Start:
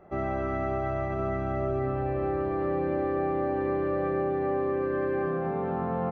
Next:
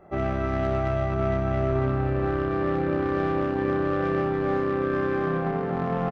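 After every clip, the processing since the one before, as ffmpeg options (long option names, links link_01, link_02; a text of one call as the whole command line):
ffmpeg -i in.wav -filter_complex "[0:a]asplit=2[link_01][link_02];[link_02]acrusher=bits=3:mix=0:aa=0.5,volume=-9dB[link_03];[link_01][link_03]amix=inputs=2:normalize=0,aecho=1:1:30|62:0.299|0.376,volume=1.5dB" out.wav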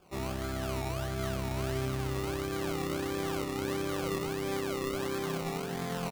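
ffmpeg -i in.wav -af "bandreject=frequency=630:width=12,acrusher=samples=22:mix=1:aa=0.000001:lfo=1:lforange=13.2:lforate=1.5,volume=-8.5dB" out.wav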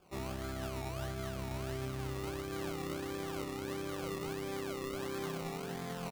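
ffmpeg -i in.wav -af "alimiter=level_in=3dB:limit=-24dB:level=0:latency=1:release=159,volume=-3dB,volume=-3.5dB" out.wav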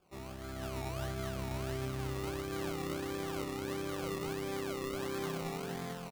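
ffmpeg -i in.wav -af "dynaudnorm=framelen=390:gausssize=3:maxgain=7.5dB,volume=-6dB" out.wav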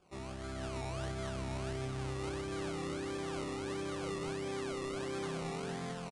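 ffmpeg -i in.wav -af "asoftclip=type=tanh:threshold=-36dB,aresample=22050,aresample=44100,volume=2.5dB" out.wav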